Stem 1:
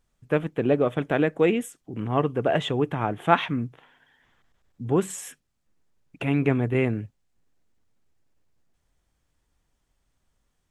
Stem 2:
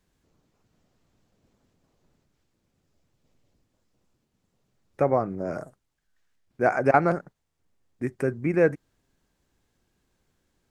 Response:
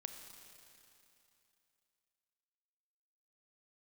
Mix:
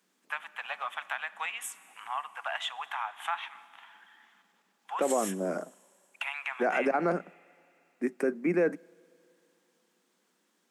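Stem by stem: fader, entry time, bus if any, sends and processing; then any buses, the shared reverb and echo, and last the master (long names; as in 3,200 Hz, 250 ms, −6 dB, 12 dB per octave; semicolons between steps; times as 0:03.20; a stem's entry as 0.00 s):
+0.5 dB, 0.00 s, send −4.5 dB, Butterworth high-pass 820 Hz 48 dB per octave; downward compressor 6 to 1, threshold −34 dBFS, peak gain reduction 17.5 dB
−1.0 dB, 0.00 s, send −22 dB, Butterworth high-pass 180 Hz 72 dB per octave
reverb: on, RT60 2.9 s, pre-delay 28 ms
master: brickwall limiter −17.5 dBFS, peak gain reduction 11 dB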